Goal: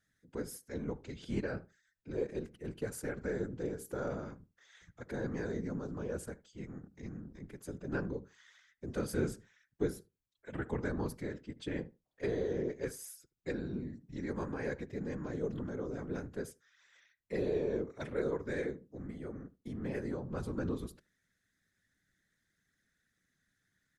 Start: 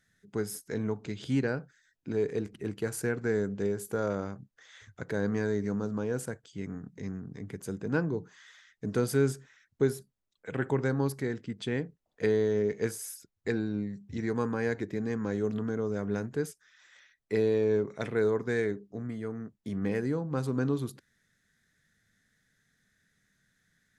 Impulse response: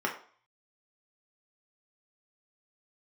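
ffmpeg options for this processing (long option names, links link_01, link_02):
-filter_complex "[0:a]afftfilt=real='hypot(re,im)*cos(2*PI*random(0))':imag='hypot(re,im)*sin(2*PI*random(1))':win_size=512:overlap=0.75,asplit=2[link_01][link_02];[link_02]adelay=76,lowpass=frequency=1600:poles=1,volume=-19.5dB,asplit=2[link_03][link_04];[link_04]adelay=76,lowpass=frequency=1600:poles=1,volume=0.16[link_05];[link_01][link_03][link_05]amix=inputs=3:normalize=0,volume=-1.5dB"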